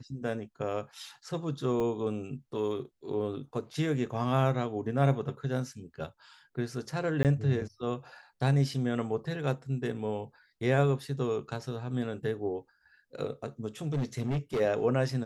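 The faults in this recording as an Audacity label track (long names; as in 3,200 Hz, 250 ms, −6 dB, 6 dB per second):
1.800000	1.800000	drop-out 3 ms
7.230000	7.250000	drop-out 18 ms
13.870000	14.610000	clipping −26.5 dBFS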